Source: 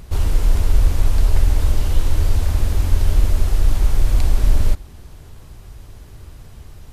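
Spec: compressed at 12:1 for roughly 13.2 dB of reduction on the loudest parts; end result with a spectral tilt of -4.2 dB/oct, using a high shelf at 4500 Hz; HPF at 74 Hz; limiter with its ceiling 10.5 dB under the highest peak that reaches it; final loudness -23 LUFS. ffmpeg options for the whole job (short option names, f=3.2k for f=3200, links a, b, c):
-af "highpass=74,highshelf=f=4.5k:g=5.5,acompressor=threshold=-32dB:ratio=12,volume=20.5dB,alimiter=limit=-13dB:level=0:latency=1"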